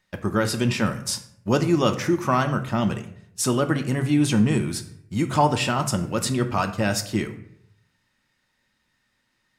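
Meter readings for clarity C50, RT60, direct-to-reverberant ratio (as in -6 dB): 11.5 dB, 0.70 s, 7.0 dB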